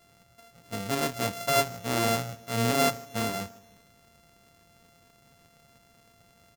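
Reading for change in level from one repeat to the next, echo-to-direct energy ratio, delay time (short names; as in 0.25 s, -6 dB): -5.5 dB, -21.5 dB, 0.154 s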